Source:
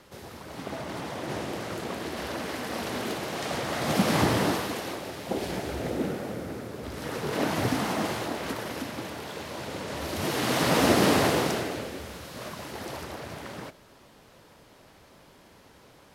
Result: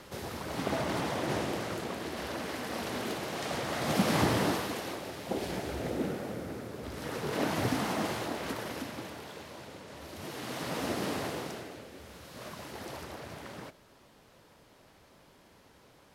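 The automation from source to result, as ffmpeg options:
-af "volume=11.5dB,afade=t=out:st=0.78:d=1.15:silence=0.421697,afade=t=out:st=8.68:d=1.14:silence=0.354813,afade=t=in:st=11.87:d=0.66:silence=0.421697"

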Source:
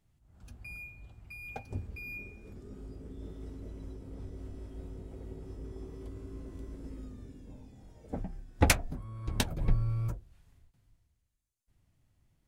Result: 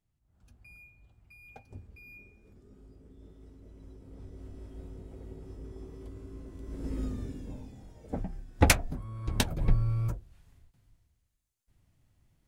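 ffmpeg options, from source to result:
-af "volume=11dB,afade=t=in:st=3.62:d=1.07:silence=0.398107,afade=t=in:st=6.62:d=0.42:silence=0.251189,afade=t=out:st=7.04:d=0.87:silence=0.375837"

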